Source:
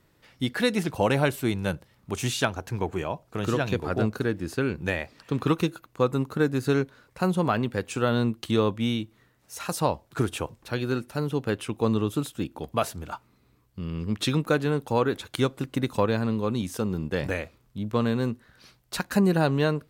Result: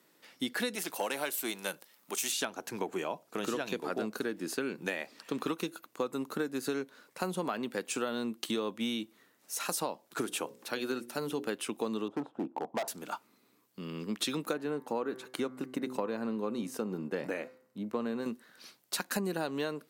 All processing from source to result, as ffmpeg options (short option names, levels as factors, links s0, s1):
-filter_complex "[0:a]asettb=1/sr,asplit=3[s0][s1][s2];[s0]atrim=end=0.754[s3];[s1]atrim=start=0.75:end=2.32,asetpts=PTS-STARTPTS,afade=t=in:d=0.004:c=qsin,afade=t=out:st=1.566:d=0.004:c=qsin,aeval=exprs='if(lt(val(0),0),0.708*val(0),val(0))':c=same,lowpass=f=3100:p=1,aemphasis=mode=production:type=riaa[s4];[s2]atrim=start=2.316[s5];[s3][s4]acrossfade=d=0.004:c1=hsin:c2=qsin[s6];[s6][s5]acrossfade=d=0.004:c1=qsin:c2=hsin,asettb=1/sr,asplit=3[s7][s8][s9];[s7]atrim=end=10.254[s10];[s8]atrim=start=10.25:end=11.48,asetpts=PTS-STARTPTS,afade=t=in:d=0.004:c=qsin,afade=t=out:st=1.226:d=0.004:c=qsin,bandreject=f=60:t=h:w=6,bandreject=f=120:t=h:w=6,bandreject=f=180:t=h:w=6,bandreject=f=240:t=h:w=6,bandreject=f=300:t=h:w=6,bandreject=f=360:t=h:w=6,bandreject=f=420:t=h:w=6,bandreject=f=480:t=h:w=6,bandreject=f=540:t=h:w=6,acompressor=mode=upward:threshold=0.00631:ratio=2.5:attack=3.2:release=140:knee=2.83:detection=peak[s11];[s9]atrim=start=11.476[s12];[s10][s11]acrossfade=d=0.004:c1=hsin:c2=qsin[s13];[s13][s12]acrossfade=d=0.004:c1=qsin:c2=hsin,asettb=1/sr,asplit=3[s14][s15][s16];[s14]atrim=end=12.084[s17];[s15]atrim=start=12.08:end=12.88,asetpts=PTS-STARTPTS,afade=t=in:d=0.004:c=qsin,afade=t=out:st=0.796:d=0.004:c=qsin,lowpass=f=840:t=q:w=3,asoftclip=type=hard:threshold=0.0708[s18];[s16]atrim=start=12.876[s19];[s17][s18]acrossfade=d=0.004:c1=hsin:c2=qsin[s20];[s20][s19]acrossfade=d=0.004:c1=qsin:c2=hsin,asettb=1/sr,asplit=3[s21][s22][s23];[s21]atrim=end=14.534[s24];[s22]atrim=start=14.53:end=18.26,asetpts=PTS-STARTPTS,afade=t=in:d=0.004:c=qsin,afade=t=out:st=3.726:d=0.004:c=qsin,highshelf=f=2400:g=-10.5,bandreject=f=3400:w=10,bandreject=f=128.2:t=h:w=4,bandreject=f=256.4:t=h:w=4,bandreject=f=384.6:t=h:w=4,bandreject=f=512.8:t=h:w=4,bandreject=f=641:t=h:w=4,bandreject=f=769.2:t=h:w=4,bandreject=f=897.4:t=h:w=4,bandreject=f=1025.6:t=h:w=4,bandreject=f=1153.8:t=h:w=4,bandreject=f=1282:t=h:w=4,bandreject=f=1410.2:t=h:w=4,bandreject=f=1538.4:t=h:w=4,bandreject=f=1666.6:t=h:w=4,bandreject=f=1794.8:t=h:w=4,bandreject=f=1923:t=h:w=4,bandreject=f=2051.2:t=h:w=4,bandreject=f=2179.4:t=h:w=4[s25];[s23]atrim=start=18.256[s26];[s24][s25]acrossfade=d=0.004:c1=hsin:c2=qsin[s27];[s27][s26]acrossfade=d=0.004:c1=qsin:c2=hsin,highpass=f=210:w=0.5412,highpass=f=210:w=1.3066,highshelf=f=4600:g=7.5,acompressor=threshold=0.0398:ratio=6,volume=0.794"